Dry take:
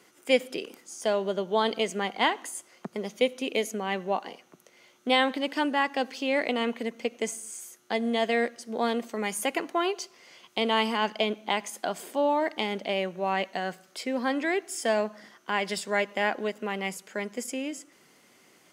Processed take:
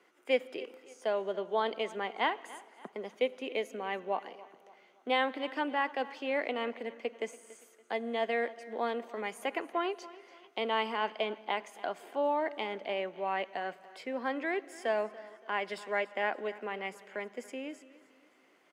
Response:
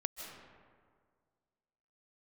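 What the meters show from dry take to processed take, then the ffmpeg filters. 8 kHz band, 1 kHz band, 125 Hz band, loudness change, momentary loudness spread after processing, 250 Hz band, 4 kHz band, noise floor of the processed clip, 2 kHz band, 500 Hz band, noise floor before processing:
-18.0 dB, -4.5 dB, no reading, -6.0 dB, 12 LU, -9.5 dB, -9.5 dB, -65 dBFS, -5.5 dB, -5.0 dB, -60 dBFS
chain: -filter_complex "[0:a]acrossover=split=260 3100:gain=0.141 1 0.2[s0][s1][s2];[s0][s1][s2]amix=inputs=3:normalize=0,aecho=1:1:284|568|852:0.112|0.0449|0.018,asplit=2[s3][s4];[1:a]atrim=start_sample=2205[s5];[s4][s5]afir=irnorm=-1:irlink=0,volume=0.119[s6];[s3][s6]amix=inputs=2:normalize=0,volume=0.531"

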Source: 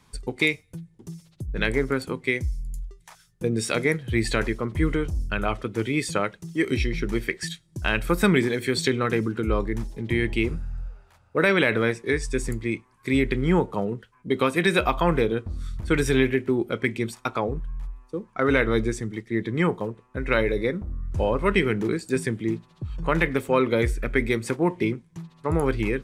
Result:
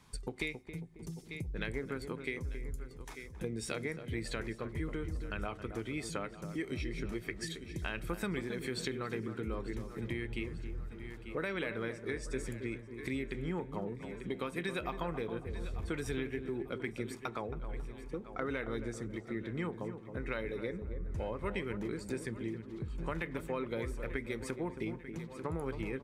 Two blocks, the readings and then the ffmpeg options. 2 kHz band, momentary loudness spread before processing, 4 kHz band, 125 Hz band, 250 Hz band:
-15.0 dB, 13 LU, -14.0 dB, -13.0 dB, -14.0 dB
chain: -filter_complex "[0:a]asplit=2[s0][s1];[s1]aecho=0:1:892|1784|2676:0.0944|0.0425|0.0191[s2];[s0][s2]amix=inputs=2:normalize=0,acompressor=threshold=0.0178:ratio=3,asplit=2[s3][s4];[s4]adelay=272,lowpass=f=960:p=1,volume=0.398,asplit=2[s5][s6];[s6]adelay=272,lowpass=f=960:p=1,volume=0.46,asplit=2[s7][s8];[s8]adelay=272,lowpass=f=960:p=1,volume=0.46,asplit=2[s9][s10];[s10]adelay=272,lowpass=f=960:p=1,volume=0.46,asplit=2[s11][s12];[s12]adelay=272,lowpass=f=960:p=1,volume=0.46[s13];[s5][s7][s9][s11][s13]amix=inputs=5:normalize=0[s14];[s3][s14]amix=inputs=2:normalize=0,volume=0.668"

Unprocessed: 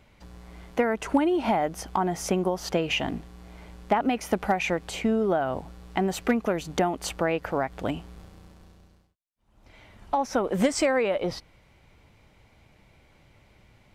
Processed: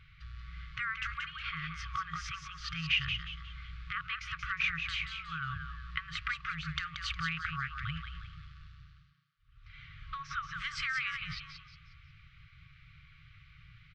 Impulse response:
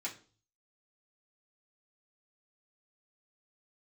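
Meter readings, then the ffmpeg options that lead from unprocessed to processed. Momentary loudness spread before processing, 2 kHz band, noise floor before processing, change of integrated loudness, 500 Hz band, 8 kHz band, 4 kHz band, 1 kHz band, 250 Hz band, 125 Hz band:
9 LU, -0.5 dB, -60 dBFS, -9.5 dB, under -40 dB, -16.0 dB, -1.0 dB, -12.5 dB, under -20 dB, -6.0 dB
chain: -filter_complex "[0:a]lowpass=f=4100:w=0.5412,lowpass=f=4100:w=1.3066,asplit=2[s0][s1];[s1]acompressor=threshold=0.0282:ratio=6,volume=1.06[s2];[s0][s2]amix=inputs=2:normalize=0,asplit=5[s3][s4][s5][s6][s7];[s4]adelay=180,afreqshift=110,volume=0.447[s8];[s5]adelay=360,afreqshift=220,volume=0.157[s9];[s6]adelay=540,afreqshift=330,volume=0.055[s10];[s7]adelay=720,afreqshift=440,volume=0.0191[s11];[s3][s8][s9][s10][s11]amix=inputs=5:normalize=0,afftfilt=real='re*(1-between(b*sr/4096,170,1100))':imag='im*(1-between(b*sr/4096,170,1100))':win_size=4096:overlap=0.75,volume=0.596"

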